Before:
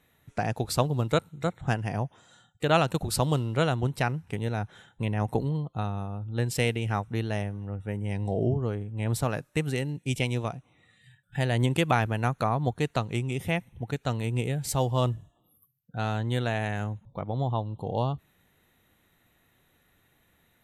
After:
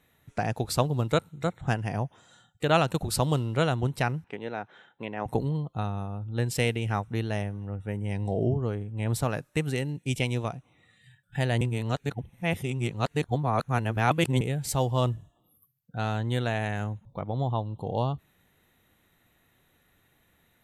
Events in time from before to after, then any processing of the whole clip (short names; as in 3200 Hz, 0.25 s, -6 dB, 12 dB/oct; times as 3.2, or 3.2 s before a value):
4.24–5.26 BPF 300–3100 Hz
11.61–14.41 reverse